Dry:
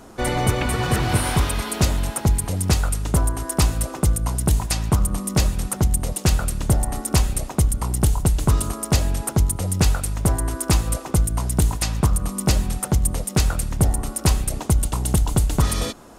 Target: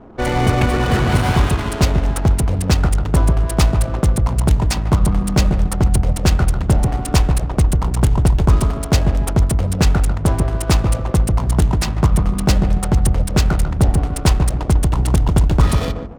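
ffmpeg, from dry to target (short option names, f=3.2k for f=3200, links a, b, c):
-filter_complex "[0:a]asplit=2[a][b];[b]adelay=147,lowpass=f=990:p=1,volume=-3.5dB,asplit=2[c][d];[d]adelay=147,lowpass=f=990:p=1,volume=0.32,asplit=2[e][f];[f]adelay=147,lowpass=f=990:p=1,volume=0.32,asplit=2[g][h];[h]adelay=147,lowpass=f=990:p=1,volume=0.32[i];[a][c][e][g][i]amix=inputs=5:normalize=0,adynamicsmooth=sensitivity=5:basefreq=630,volume=4dB"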